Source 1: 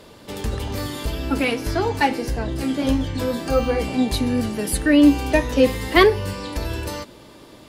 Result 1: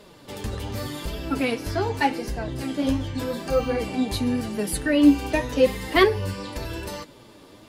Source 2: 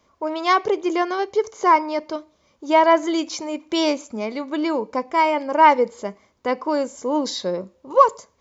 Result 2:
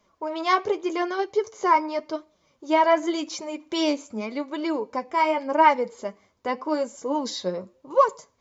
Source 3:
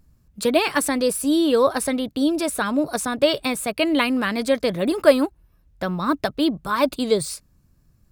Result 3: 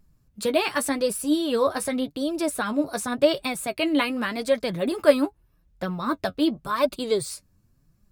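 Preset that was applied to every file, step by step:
flanger 0.87 Hz, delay 4.6 ms, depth 6.5 ms, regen +36%

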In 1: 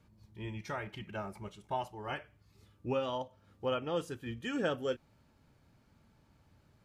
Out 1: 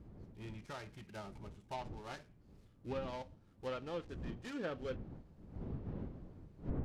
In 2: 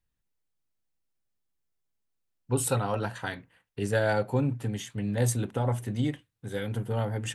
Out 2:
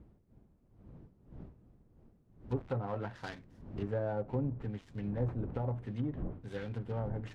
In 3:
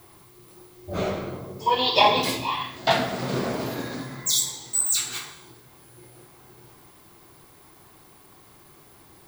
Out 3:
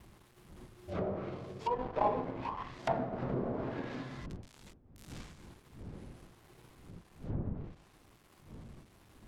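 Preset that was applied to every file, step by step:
gap after every zero crossing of 0.17 ms
wind on the microphone 190 Hz −41 dBFS
treble cut that deepens with the level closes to 820 Hz, closed at −23 dBFS
level −7.5 dB

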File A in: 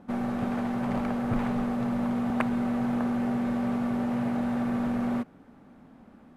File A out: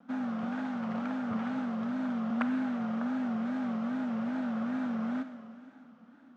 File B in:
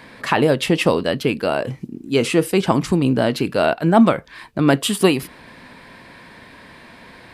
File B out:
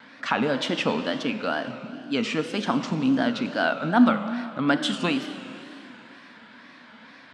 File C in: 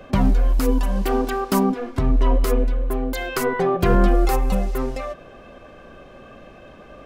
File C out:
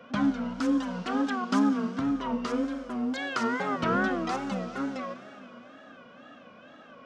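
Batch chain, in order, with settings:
loudspeaker in its box 200–6,800 Hz, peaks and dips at 250 Hz +9 dB, 380 Hz −10 dB, 1,400 Hz +9 dB, 3,300 Hz +5 dB, 5,800 Hz +3 dB
four-comb reverb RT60 2.8 s, combs from 31 ms, DRR 8.5 dB
tape wow and flutter 130 cents
level −8 dB

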